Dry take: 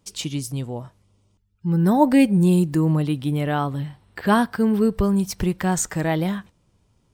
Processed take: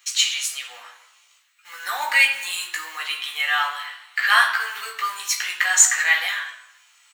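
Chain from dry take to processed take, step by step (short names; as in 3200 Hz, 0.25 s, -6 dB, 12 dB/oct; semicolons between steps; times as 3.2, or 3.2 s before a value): G.711 law mismatch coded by mu; HPF 1300 Hz 24 dB/oct; high shelf 4200 Hz +11 dB; doubler 16 ms -5 dB; reverb RT60 0.85 s, pre-delay 3 ms, DRR 0 dB; gain -3 dB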